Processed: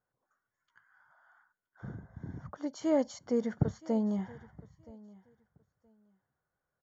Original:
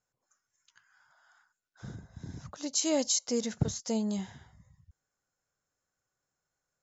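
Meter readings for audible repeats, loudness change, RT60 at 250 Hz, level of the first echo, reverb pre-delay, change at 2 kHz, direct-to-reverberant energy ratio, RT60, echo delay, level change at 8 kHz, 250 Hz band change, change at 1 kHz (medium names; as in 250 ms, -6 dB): 1, -3.0 dB, no reverb, -22.0 dB, no reverb, -3.0 dB, no reverb, no reverb, 972 ms, no reading, +1.0 dB, +1.5 dB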